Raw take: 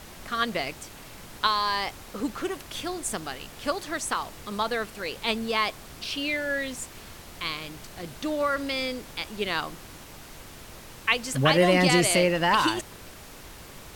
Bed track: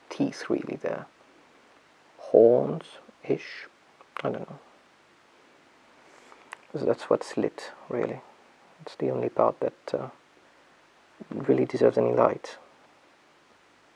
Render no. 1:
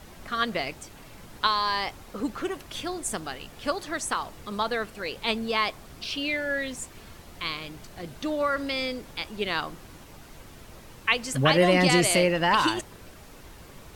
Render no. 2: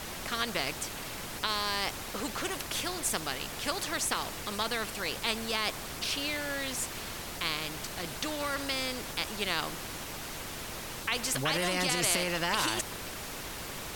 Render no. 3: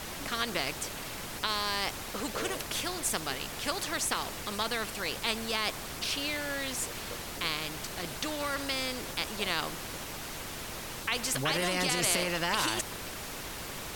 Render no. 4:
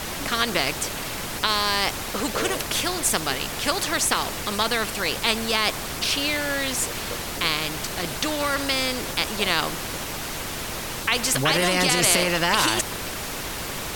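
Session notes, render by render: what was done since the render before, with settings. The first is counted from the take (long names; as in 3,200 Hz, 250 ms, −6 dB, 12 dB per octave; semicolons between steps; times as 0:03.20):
broadband denoise 6 dB, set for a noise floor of −46 dBFS
brickwall limiter −14 dBFS, peak gain reduction 8 dB; every bin compressed towards the loudest bin 2 to 1
mix in bed track −23.5 dB
level +9 dB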